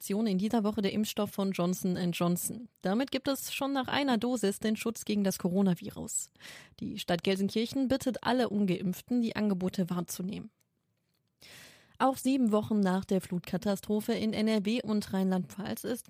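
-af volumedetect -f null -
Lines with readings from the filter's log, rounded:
mean_volume: -31.2 dB
max_volume: -13.7 dB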